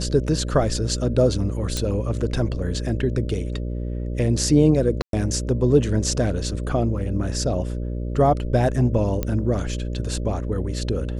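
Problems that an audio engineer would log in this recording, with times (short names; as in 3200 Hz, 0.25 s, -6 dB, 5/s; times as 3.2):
buzz 60 Hz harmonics 10 -27 dBFS
1.77 pop
5.02–5.13 gap 0.112 s
9.23 pop -11 dBFS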